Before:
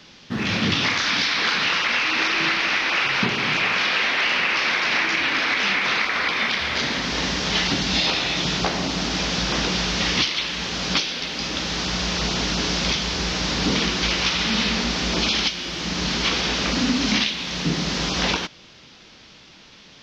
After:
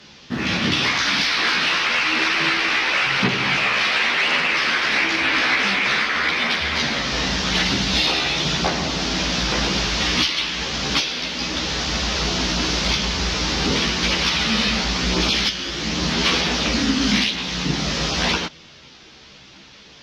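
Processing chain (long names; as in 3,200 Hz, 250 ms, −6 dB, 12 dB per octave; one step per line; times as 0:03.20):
harmonic generator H 5 −30 dB, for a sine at −8.5 dBFS
multi-voice chorus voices 2, 0.46 Hz, delay 14 ms, depth 1.8 ms
level +4 dB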